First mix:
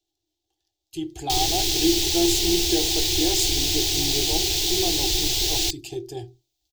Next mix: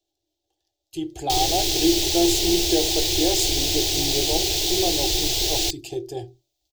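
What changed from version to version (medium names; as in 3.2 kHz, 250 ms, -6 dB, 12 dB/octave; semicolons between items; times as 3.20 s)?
master: add peaking EQ 560 Hz +13 dB 0.48 oct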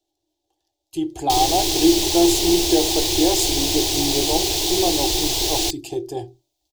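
master: add fifteen-band graphic EQ 250 Hz +10 dB, 1 kHz +11 dB, 10 kHz +5 dB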